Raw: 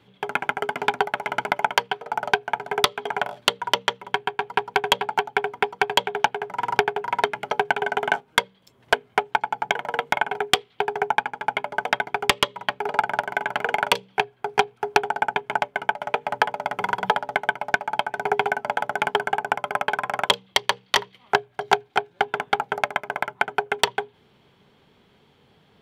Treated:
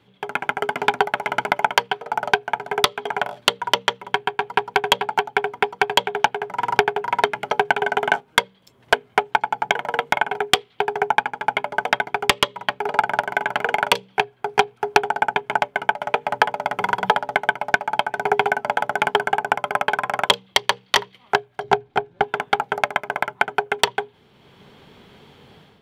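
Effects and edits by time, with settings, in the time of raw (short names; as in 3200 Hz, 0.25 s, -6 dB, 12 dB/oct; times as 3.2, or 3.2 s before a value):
21.64–22.24 tilt -2.5 dB/oct
whole clip: AGC; gain -1 dB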